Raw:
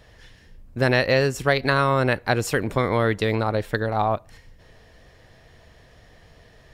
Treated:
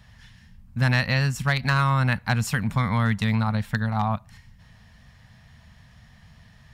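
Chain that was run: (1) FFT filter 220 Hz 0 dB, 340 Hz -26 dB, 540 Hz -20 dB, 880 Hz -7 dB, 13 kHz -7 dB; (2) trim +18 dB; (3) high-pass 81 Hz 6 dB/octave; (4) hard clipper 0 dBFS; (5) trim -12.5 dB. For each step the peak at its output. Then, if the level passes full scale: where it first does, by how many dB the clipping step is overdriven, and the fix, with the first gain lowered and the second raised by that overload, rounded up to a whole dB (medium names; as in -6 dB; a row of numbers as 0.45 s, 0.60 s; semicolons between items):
-13.0 dBFS, +5.0 dBFS, +4.5 dBFS, 0.0 dBFS, -12.5 dBFS; step 2, 4.5 dB; step 2 +13 dB, step 5 -7.5 dB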